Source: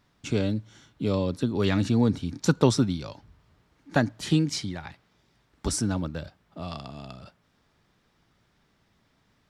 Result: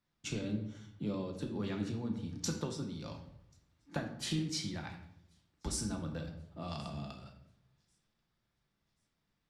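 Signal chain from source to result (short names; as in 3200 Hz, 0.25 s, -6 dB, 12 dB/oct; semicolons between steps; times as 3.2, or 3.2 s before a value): compressor 10:1, threshold -31 dBFS, peak gain reduction 17.5 dB; on a send: thin delay 1.086 s, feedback 52%, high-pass 3700 Hz, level -23.5 dB; on the sum: shoebox room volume 260 m³, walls mixed, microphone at 0.82 m; three-band expander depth 40%; gain -5 dB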